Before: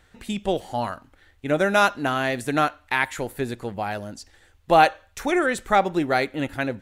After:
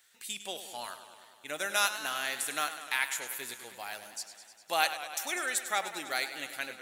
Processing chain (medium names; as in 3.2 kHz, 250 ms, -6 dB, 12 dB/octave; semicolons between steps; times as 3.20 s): high-pass 45 Hz; differentiator; modulated delay 101 ms, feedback 74%, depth 92 cents, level -12 dB; trim +4 dB